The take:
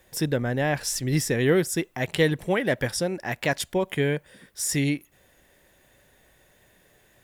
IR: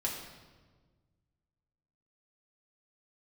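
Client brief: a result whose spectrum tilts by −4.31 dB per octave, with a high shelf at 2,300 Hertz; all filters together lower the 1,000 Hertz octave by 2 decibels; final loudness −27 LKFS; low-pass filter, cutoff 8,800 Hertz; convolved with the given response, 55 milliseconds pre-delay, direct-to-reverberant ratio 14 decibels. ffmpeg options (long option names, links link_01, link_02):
-filter_complex "[0:a]lowpass=8800,equalizer=frequency=1000:width_type=o:gain=-3.5,highshelf=frequency=2300:gain=3,asplit=2[link_01][link_02];[1:a]atrim=start_sample=2205,adelay=55[link_03];[link_02][link_03]afir=irnorm=-1:irlink=0,volume=-18dB[link_04];[link_01][link_04]amix=inputs=2:normalize=0,volume=-1.5dB"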